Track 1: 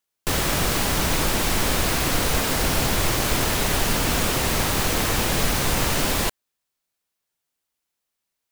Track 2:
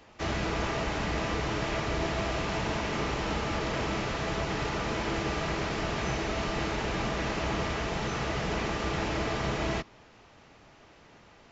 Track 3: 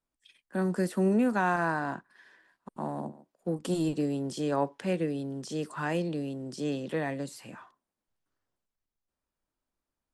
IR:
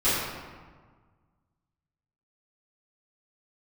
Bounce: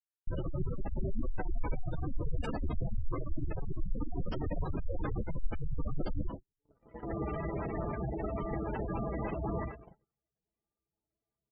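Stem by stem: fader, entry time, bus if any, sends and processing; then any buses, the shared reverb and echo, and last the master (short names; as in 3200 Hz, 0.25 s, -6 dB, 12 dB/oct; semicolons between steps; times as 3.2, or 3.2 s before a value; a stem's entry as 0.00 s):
-9.0 dB, 0.00 s, send -21 dB, dry
4.44 s -22.5 dB -> 5.01 s -14 dB -> 6.51 s -14 dB -> 7.18 s -2 dB -> 9.61 s -2 dB -> 10.26 s -12.5 dB, 1.95 s, no send, dry
-12.5 dB, 0.00 s, no send, tone controls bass -6 dB, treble -15 dB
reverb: on, RT60 1.5 s, pre-delay 3 ms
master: spectral gate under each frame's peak -10 dB strong; gate -36 dBFS, range -48 dB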